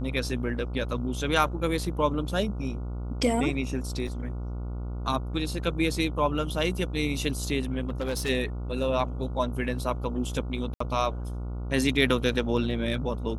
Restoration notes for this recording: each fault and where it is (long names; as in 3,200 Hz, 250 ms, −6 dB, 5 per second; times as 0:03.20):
mains buzz 60 Hz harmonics 24 −33 dBFS
0:04.07: drop-out 4.8 ms
0:07.88–0:08.30: clipping −25 dBFS
0:10.74–0:10.80: drop-out 64 ms